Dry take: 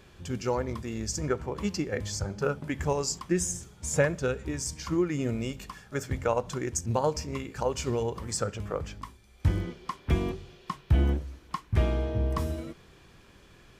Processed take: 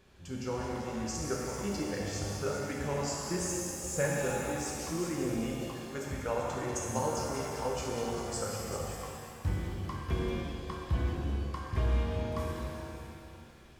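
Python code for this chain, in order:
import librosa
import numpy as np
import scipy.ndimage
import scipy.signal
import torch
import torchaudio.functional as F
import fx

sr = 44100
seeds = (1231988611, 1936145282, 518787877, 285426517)

y = fx.echo_stepped(x, sr, ms=194, hz=4100.0, octaves=0.7, feedback_pct=70, wet_db=-5.0)
y = fx.rev_shimmer(y, sr, seeds[0], rt60_s=2.4, semitones=7, shimmer_db=-8, drr_db=-3.0)
y = F.gain(torch.from_numpy(y), -9.0).numpy()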